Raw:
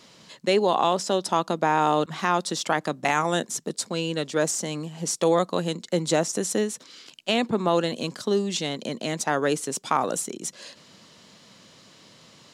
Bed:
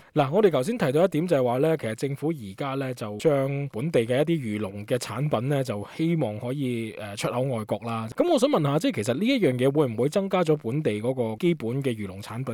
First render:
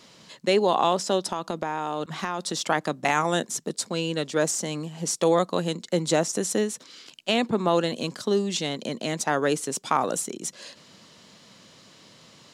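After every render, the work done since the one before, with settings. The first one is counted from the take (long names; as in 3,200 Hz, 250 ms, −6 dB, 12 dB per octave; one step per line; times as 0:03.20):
0:01.28–0:02.57: downward compressor 10 to 1, threshold −23 dBFS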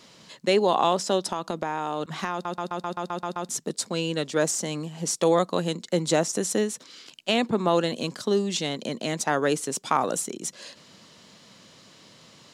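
0:02.32: stutter in place 0.13 s, 9 plays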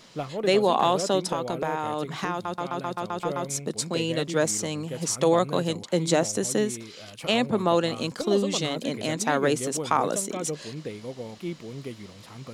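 mix in bed −10.5 dB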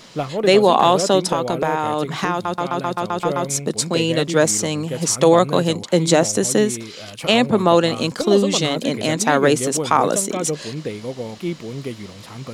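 level +8 dB
brickwall limiter −2 dBFS, peak gain reduction 2 dB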